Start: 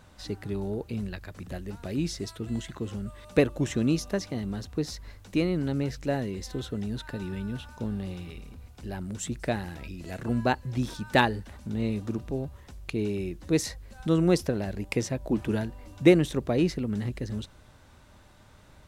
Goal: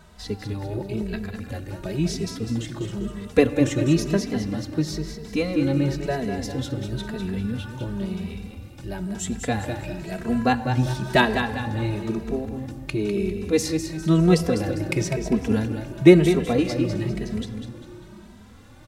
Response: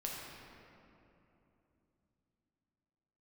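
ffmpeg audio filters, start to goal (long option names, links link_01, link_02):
-filter_complex "[0:a]aecho=1:1:200|400|600|800:0.422|0.164|0.0641|0.025,asplit=2[link_01][link_02];[1:a]atrim=start_sample=2205[link_03];[link_02][link_03]afir=irnorm=-1:irlink=0,volume=-10dB[link_04];[link_01][link_04]amix=inputs=2:normalize=0,asplit=2[link_05][link_06];[link_06]adelay=2.7,afreqshift=0.99[link_07];[link_05][link_07]amix=inputs=2:normalize=1,volume=5.5dB"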